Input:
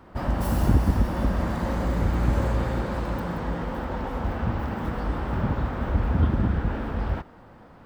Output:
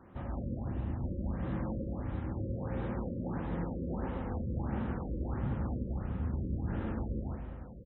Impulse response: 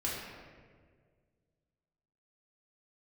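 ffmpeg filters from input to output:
-filter_complex "[0:a]areverse,acompressor=threshold=-29dB:ratio=16,areverse,highpass=frequency=96:poles=1,equalizer=frequency=1000:width=0.33:gain=-8,aecho=1:1:93.29|131.2:0.501|0.447,asplit=2[link_01][link_02];[1:a]atrim=start_sample=2205,asetrate=48510,aresample=44100,lowpass=frequency=3900:width=0.5412,lowpass=frequency=3900:width=1.3066[link_03];[link_02][link_03]afir=irnorm=-1:irlink=0,volume=-6dB[link_04];[link_01][link_04]amix=inputs=2:normalize=0,afftfilt=real='re*lt(b*sr/1024,560*pow(4100/560,0.5+0.5*sin(2*PI*1.5*pts/sr)))':imag='im*lt(b*sr/1024,560*pow(4100/560,0.5+0.5*sin(2*PI*1.5*pts/sr)))':win_size=1024:overlap=0.75,volume=-2.5dB"

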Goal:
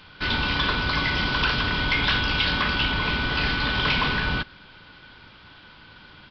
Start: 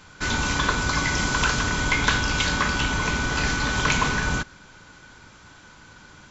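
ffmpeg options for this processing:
ffmpeg -i in.wav -af "equalizer=frequency=3100:width_type=o:width=0.73:gain=7.5,aresample=11025,asoftclip=type=hard:threshold=-16dB,aresample=44100,volume=-1dB" out.wav

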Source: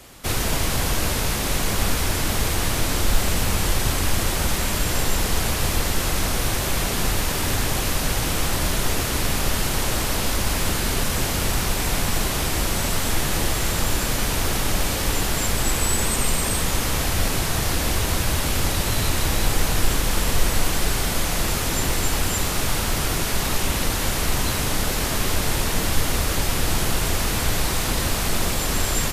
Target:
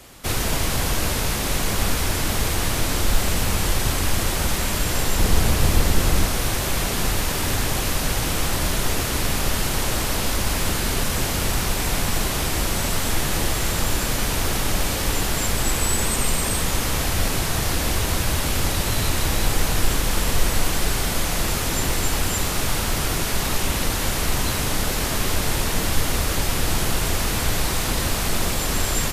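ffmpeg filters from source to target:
ffmpeg -i in.wav -filter_complex "[0:a]asettb=1/sr,asplit=3[link_01][link_02][link_03];[link_01]atrim=end=5.194[link_04];[link_02]atrim=start=5.19:end=6.25,asetpts=PTS-STARTPTS,afade=type=in:duration=0.004:curve=qsin,afade=type=out:start_time=1.056:duration=0.004:curve=qsin,lowshelf=frequency=430:gain=6[link_05];[link_03]atrim=start=6.246[link_06];[link_04][link_05]acrossfade=duration=0.004:curve1=hsin:curve2=qsin[link_07];[link_07][link_06]acrossfade=duration=0.004:curve1=qsin:curve2=hsin" out.wav

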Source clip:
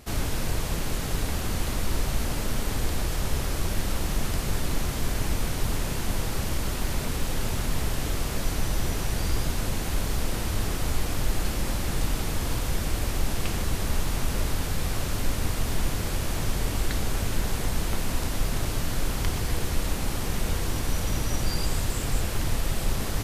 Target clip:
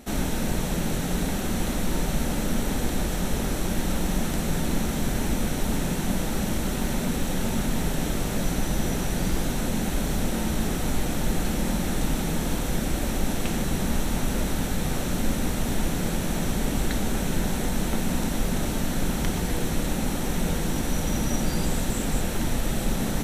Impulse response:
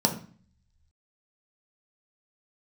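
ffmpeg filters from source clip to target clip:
-filter_complex "[0:a]asplit=2[link_01][link_02];[1:a]atrim=start_sample=2205,lowshelf=frequency=340:gain=5[link_03];[link_02][link_03]afir=irnorm=-1:irlink=0,volume=-19.5dB[link_04];[link_01][link_04]amix=inputs=2:normalize=0"

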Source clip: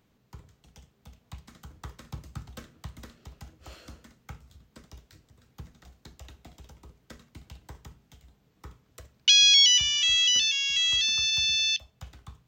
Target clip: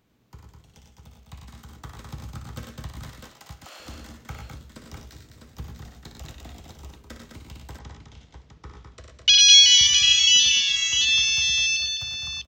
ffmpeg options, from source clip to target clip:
ffmpeg -i in.wav -filter_complex "[0:a]asettb=1/sr,asplit=3[link_01][link_02][link_03];[link_01]atrim=end=3.004[link_04];[link_02]atrim=start=3:end=3.8,asetpts=PTS-STARTPTS,afade=type=in:duration=0.004:curve=qsin,afade=type=out:start_time=0.796:duration=0.004:curve=qsin,highpass=590[link_05];[link_03]atrim=start=3.796[link_06];[link_04][link_05]acrossfade=duration=0.004:curve1=hsin:curve2=qsin[link_07];[link_07][link_06]acrossfade=duration=0.004:curve1=qsin:curve2=hsin,aecho=1:1:58|97|114|207|234|652:0.422|0.501|0.376|0.531|0.188|0.473,dynaudnorm=framelen=890:gausssize=7:maxgain=6dB,asplit=3[link_08][link_09][link_10];[link_08]afade=type=out:start_time=7.78:duration=0.02[link_11];[link_09]lowpass=frequency=6300:width=0.5412,lowpass=frequency=6300:width=1.3066,afade=type=in:start_time=7.78:duration=0.02,afade=type=out:start_time=9.37:duration=0.02[link_12];[link_10]afade=type=in:start_time=9.37:duration=0.02[link_13];[link_11][link_12][link_13]amix=inputs=3:normalize=0" out.wav

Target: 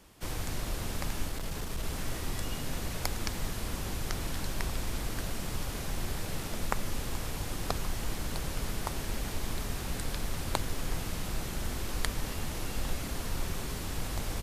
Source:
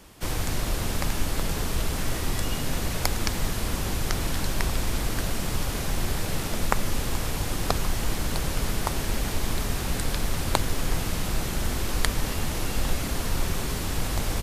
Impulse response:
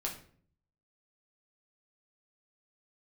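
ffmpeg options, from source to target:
-filter_complex "[0:a]asettb=1/sr,asplit=3[link_01][link_02][link_03];[link_01]atrim=end=1.284[link_04];[link_02]atrim=start=1.28:end=1.84,asetpts=PTS-STARTPTS,afade=type=in:duration=0.004:curve=qsin,afade=type=out:start_time=0.556:duration=0.004:curve=qsin,aeval=exprs='(tanh(8.91*val(0)+0.25)-tanh(0.25))/8.91':channel_layout=same[link_05];[link_03]atrim=start=1.836[link_06];[link_04][link_05]acrossfade=duration=0.004:curve1=hsin:curve2=qsin[link_07];[link_07][link_06]acrossfade=duration=0.004:curve1=qsin:curve2=hsin,volume=-7.5dB"

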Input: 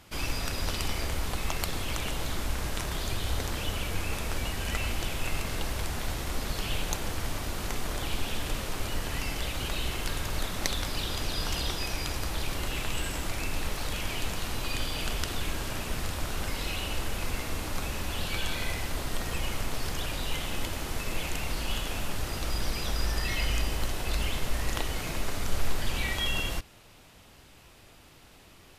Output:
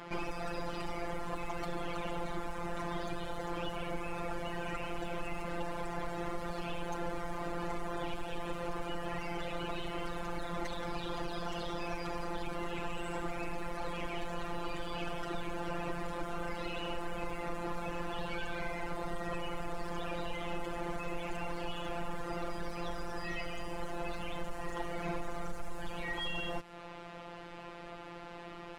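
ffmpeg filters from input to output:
ffmpeg -i in.wav -filter_complex "[0:a]lowpass=11000,highshelf=frequency=2400:gain=-9.5,acrossover=split=7200[link_01][link_02];[link_01]acompressor=threshold=-38dB:ratio=6[link_03];[link_02]asoftclip=type=tanh:threshold=-39.5dB[link_04];[link_03][link_04]amix=inputs=2:normalize=0,afftfilt=real='hypot(re,im)*cos(PI*b)':imag='0':win_size=1024:overlap=0.75,volume=33dB,asoftclip=hard,volume=-33dB,asplit=2[link_05][link_06];[link_06]highpass=frequency=720:poles=1,volume=16dB,asoftclip=type=tanh:threshold=-32.5dB[link_07];[link_05][link_07]amix=inputs=2:normalize=0,lowpass=frequency=1100:poles=1,volume=-6dB,volume=10.5dB" out.wav

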